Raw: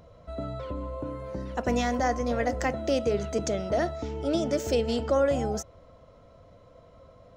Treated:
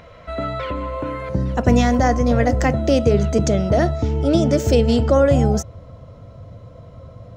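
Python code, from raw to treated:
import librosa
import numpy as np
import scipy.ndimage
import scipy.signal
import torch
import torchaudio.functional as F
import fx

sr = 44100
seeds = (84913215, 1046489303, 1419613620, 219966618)

y = fx.peak_eq(x, sr, hz=fx.steps((0.0, 2100.0), (1.29, 110.0)), db=14.0, octaves=1.7)
y = y * librosa.db_to_amplitude(7.0)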